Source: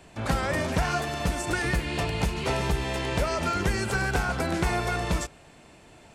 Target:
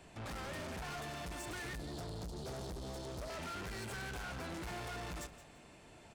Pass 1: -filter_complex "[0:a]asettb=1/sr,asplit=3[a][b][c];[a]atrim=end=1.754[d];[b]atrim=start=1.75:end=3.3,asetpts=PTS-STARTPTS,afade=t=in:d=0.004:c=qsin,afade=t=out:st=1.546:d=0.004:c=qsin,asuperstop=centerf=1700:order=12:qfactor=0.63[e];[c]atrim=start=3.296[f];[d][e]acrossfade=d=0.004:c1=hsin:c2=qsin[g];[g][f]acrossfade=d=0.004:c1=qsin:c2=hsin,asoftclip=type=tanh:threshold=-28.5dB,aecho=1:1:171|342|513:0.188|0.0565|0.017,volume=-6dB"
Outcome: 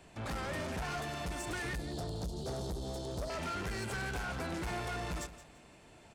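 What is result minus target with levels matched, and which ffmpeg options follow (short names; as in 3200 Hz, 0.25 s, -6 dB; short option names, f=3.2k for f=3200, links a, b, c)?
soft clip: distortion -4 dB
-filter_complex "[0:a]asettb=1/sr,asplit=3[a][b][c];[a]atrim=end=1.754[d];[b]atrim=start=1.75:end=3.3,asetpts=PTS-STARTPTS,afade=t=in:d=0.004:c=qsin,afade=t=out:st=1.546:d=0.004:c=qsin,asuperstop=centerf=1700:order=12:qfactor=0.63[e];[c]atrim=start=3.296[f];[d][e]acrossfade=d=0.004:c1=hsin:c2=qsin[g];[g][f]acrossfade=d=0.004:c1=qsin:c2=hsin,asoftclip=type=tanh:threshold=-36dB,aecho=1:1:171|342|513:0.188|0.0565|0.017,volume=-6dB"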